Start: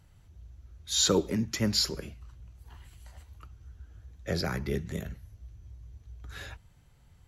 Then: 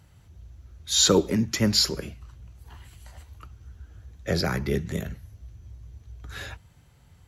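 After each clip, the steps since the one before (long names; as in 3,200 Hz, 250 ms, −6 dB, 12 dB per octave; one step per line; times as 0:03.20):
high-pass filter 56 Hz
level +5.5 dB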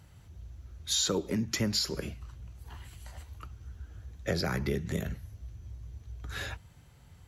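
downward compressor 5 to 1, threshold −27 dBFS, peak gain reduction 12 dB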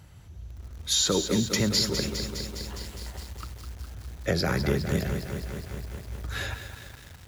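feedback echo at a low word length 205 ms, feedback 80%, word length 8 bits, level −8 dB
level +4.5 dB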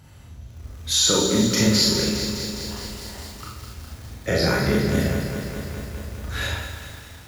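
four-comb reverb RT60 0.61 s, combs from 26 ms, DRR −3.5 dB
level +1 dB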